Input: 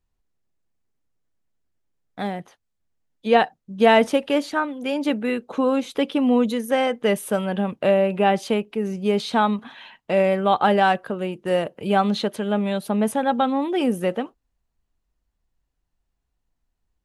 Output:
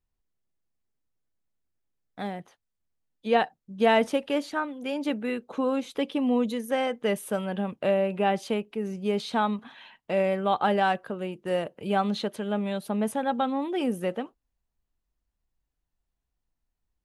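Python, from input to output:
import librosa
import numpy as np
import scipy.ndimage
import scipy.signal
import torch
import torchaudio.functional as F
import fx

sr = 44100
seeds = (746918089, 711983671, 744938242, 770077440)

y = fx.notch(x, sr, hz=1400.0, q=7.1, at=(6.01, 6.66))
y = F.gain(torch.from_numpy(y), -6.0).numpy()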